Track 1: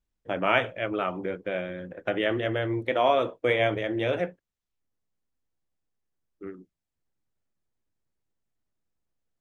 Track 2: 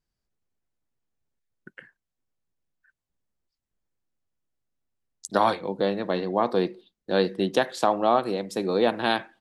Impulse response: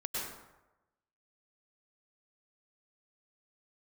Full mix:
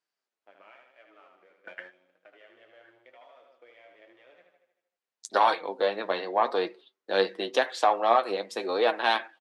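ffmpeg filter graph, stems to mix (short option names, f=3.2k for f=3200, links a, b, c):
-filter_complex "[0:a]acompressor=threshold=-26dB:ratio=6,aeval=exprs='sgn(val(0))*max(abs(val(0))-0.00562,0)':c=same,adelay=100,volume=-3.5dB,asplit=2[a][b];[b]volume=-15.5dB[c];[1:a]highpass=170,highshelf=f=6.8k:g=10,acontrast=71,volume=-1dB,asplit=2[d][e];[e]apad=whole_len=419056[f];[a][f]sidechaingate=range=-60dB:threshold=-44dB:ratio=16:detection=peak[g];[c]aecho=0:1:77|154|231|308|385|462|539|616:1|0.56|0.314|0.176|0.0983|0.0551|0.0308|0.0173[h];[g][d][h]amix=inputs=3:normalize=0,flanger=delay=6.1:depth=4.2:regen=41:speed=0.9:shape=triangular,highpass=520,lowpass=2.9k,crystalizer=i=1.5:c=0"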